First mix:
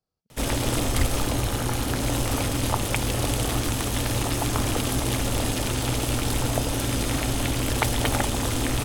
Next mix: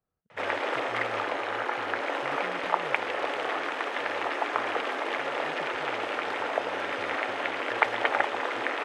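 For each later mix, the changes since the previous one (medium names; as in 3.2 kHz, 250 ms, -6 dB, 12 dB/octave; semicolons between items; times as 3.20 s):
background: add high-pass 420 Hz 24 dB/octave; master: add resonant low-pass 1.9 kHz, resonance Q 1.8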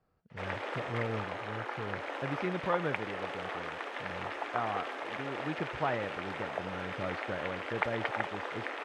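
speech +11.5 dB; background -8.5 dB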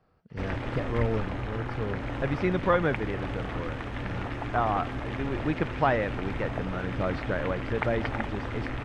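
speech +8.0 dB; background: remove high-pass 420 Hz 24 dB/octave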